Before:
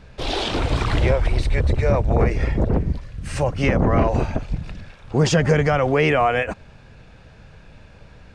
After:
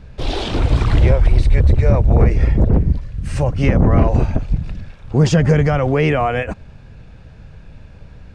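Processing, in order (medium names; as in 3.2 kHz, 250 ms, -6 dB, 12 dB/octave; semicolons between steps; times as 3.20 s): bass shelf 280 Hz +9.5 dB; trim -1.5 dB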